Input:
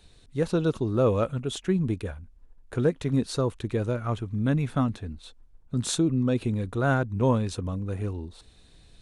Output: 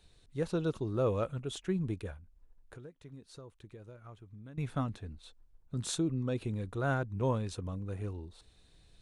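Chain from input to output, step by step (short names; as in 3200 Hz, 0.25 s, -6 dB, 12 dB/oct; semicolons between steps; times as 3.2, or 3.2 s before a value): bell 240 Hz -6 dB 0.24 oct; 2.16–4.58 compressor 4:1, threshold -43 dBFS, peak gain reduction 20.5 dB; gain -7.5 dB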